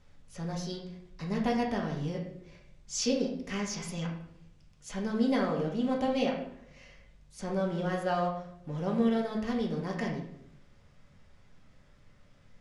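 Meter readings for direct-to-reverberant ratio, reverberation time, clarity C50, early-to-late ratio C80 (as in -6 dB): -1.5 dB, 0.70 s, 6.0 dB, 9.0 dB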